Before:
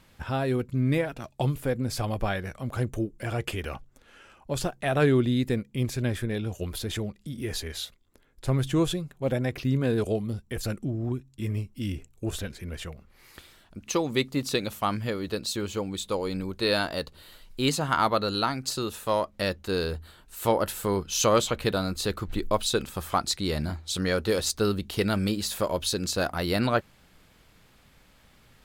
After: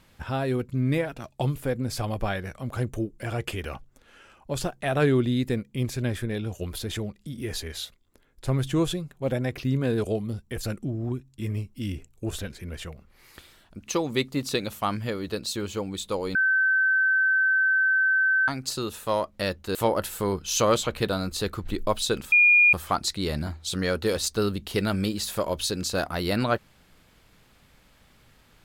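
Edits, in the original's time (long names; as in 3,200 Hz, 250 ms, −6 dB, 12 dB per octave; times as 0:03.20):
0:16.35–0:18.48: beep over 1,540 Hz −18.5 dBFS
0:19.75–0:20.39: remove
0:22.96: insert tone 2,430 Hz −13.5 dBFS 0.41 s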